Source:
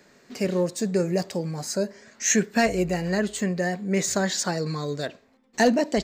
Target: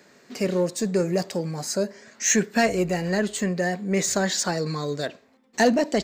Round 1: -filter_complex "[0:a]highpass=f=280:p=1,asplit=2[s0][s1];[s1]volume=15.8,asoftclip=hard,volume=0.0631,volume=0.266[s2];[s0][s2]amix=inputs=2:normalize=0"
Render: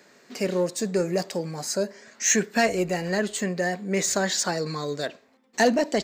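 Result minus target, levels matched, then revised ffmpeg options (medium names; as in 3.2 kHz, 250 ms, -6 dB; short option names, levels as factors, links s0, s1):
125 Hz band -2.5 dB
-filter_complex "[0:a]highpass=f=120:p=1,asplit=2[s0][s1];[s1]volume=15.8,asoftclip=hard,volume=0.0631,volume=0.266[s2];[s0][s2]amix=inputs=2:normalize=0"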